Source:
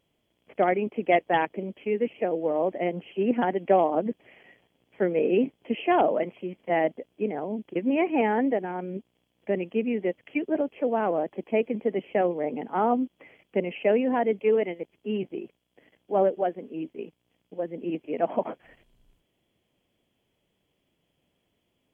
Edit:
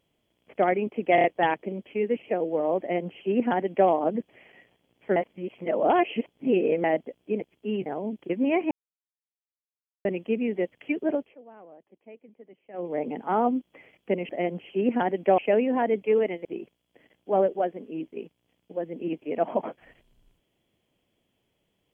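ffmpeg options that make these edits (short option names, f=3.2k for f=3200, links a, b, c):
-filter_complex "[0:a]asplit=15[a][b][c][d][e][f][g][h][i][j][k][l][m][n][o];[a]atrim=end=1.182[p];[b]atrim=start=1.148:end=1.182[q];[c]atrim=start=1.148:end=1.182[r];[d]atrim=start=1.148:end=5.072[s];[e]atrim=start=5.068:end=6.752,asetpts=PTS-STARTPTS,areverse[t];[f]atrim=start=6.748:end=7.322[u];[g]atrim=start=14.818:end=15.272[v];[h]atrim=start=7.318:end=8.17,asetpts=PTS-STARTPTS,afade=t=out:st=0.848:d=0.004:c=hsin[w];[i]atrim=start=8.17:end=9.51,asetpts=PTS-STARTPTS,volume=0[x];[j]atrim=start=9.51:end=10.82,asetpts=PTS-STARTPTS,afade=t=in:d=0.004:c=hsin,afade=t=out:st=1.1:d=0.21:silence=0.0707946[y];[k]atrim=start=10.82:end=12.19,asetpts=PTS-STARTPTS,volume=-23dB[z];[l]atrim=start=12.19:end=13.752,asetpts=PTS-STARTPTS,afade=t=in:d=0.21:silence=0.0707946[aa];[m]atrim=start=2.708:end=3.802[ab];[n]atrim=start=13.748:end=14.822[ac];[o]atrim=start=15.268[ad];[p][q]acrossfade=d=0.004:c1=hsin:c2=hsin[ae];[ae][r]acrossfade=d=0.004:c1=hsin:c2=hsin[af];[af][s]acrossfade=d=0.004:c1=hsin:c2=hsin[ag];[ag][t]acrossfade=d=0.004:c1=hsin:c2=hsin[ah];[ah][u]acrossfade=d=0.004:c1=hsin:c2=hsin[ai];[ai][v]acrossfade=d=0.004:c1=hsin:c2=hsin[aj];[w][x][y][z][aa]concat=n=5:v=0:a=1[ak];[aj][ak]acrossfade=d=0.004:c1=hsin:c2=hsin[al];[al][ab]acrossfade=d=0.004:c1=hsin:c2=hsin[am];[am][ac]acrossfade=d=0.004:c1=hsin:c2=hsin[an];[an][ad]acrossfade=d=0.004:c1=hsin:c2=hsin"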